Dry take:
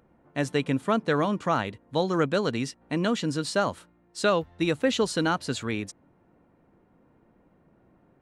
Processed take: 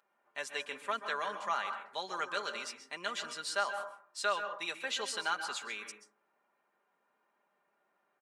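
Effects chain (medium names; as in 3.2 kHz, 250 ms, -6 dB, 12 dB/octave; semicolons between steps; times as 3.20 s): high-pass 980 Hz 12 dB/octave; comb 5 ms, depth 59%; plate-style reverb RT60 0.54 s, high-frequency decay 0.25×, pre-delay 120 ms, DRR 7 dB; trim -6 dB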